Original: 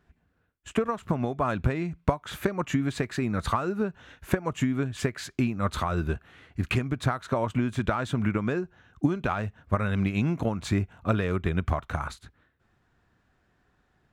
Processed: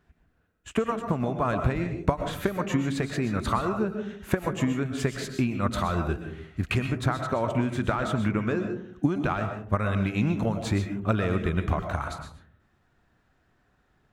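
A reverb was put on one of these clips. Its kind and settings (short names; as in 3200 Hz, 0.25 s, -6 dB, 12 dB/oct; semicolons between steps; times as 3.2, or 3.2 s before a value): digital reverb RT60 0.56 s, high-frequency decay 0.3×, pre-delay 85 ms, DRR 6 dB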